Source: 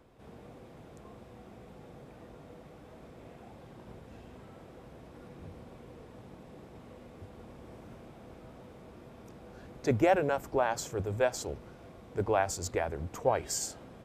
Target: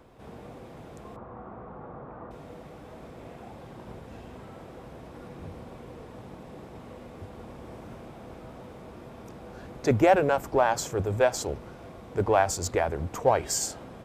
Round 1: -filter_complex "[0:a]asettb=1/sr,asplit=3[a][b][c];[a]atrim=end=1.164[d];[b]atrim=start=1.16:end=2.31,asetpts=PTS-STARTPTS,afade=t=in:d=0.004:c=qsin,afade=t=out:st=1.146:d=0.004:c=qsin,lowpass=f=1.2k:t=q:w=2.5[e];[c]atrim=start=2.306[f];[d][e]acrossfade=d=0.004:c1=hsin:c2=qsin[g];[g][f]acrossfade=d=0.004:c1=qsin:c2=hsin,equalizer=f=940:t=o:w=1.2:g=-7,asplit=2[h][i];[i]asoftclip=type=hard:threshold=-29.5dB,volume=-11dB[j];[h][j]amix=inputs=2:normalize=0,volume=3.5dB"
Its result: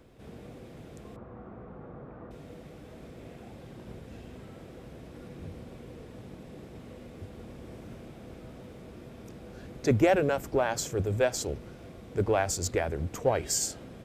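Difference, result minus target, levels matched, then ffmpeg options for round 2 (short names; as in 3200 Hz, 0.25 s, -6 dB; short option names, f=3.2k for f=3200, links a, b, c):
1000 Hz band -4.5 dB
-filter_complex "[0:a]asettb=1/sr,asplit=3[a][b][c];[a]atrim=end=1.164[d];[b]atrim=start=1.16:end=2.31,asetpts=PTS-STARTPTS,afade=t=in:d=0.004:c=qsin,afade=t=out:st=1.146:d=0.004:c=qsin,lowpass=f=1.2k:t=q:w=2.5[e];[c]atrim=start=2.306[f];[d][e]acrossfade=d=0.004:c1=hsin:c2=qsin[g];[g][f]acrossfade=d=0.004:c1=qsin:c2=hsin,equalizer=f=940:t=o:w=1.2:g=2.5,asplit=2[h][i];[i]asoftclip=type=hard:threshold=-29.5dB,volume=-11dB[j];[h][j]amix=inputs=2:normalize=0,volume=3.5dB"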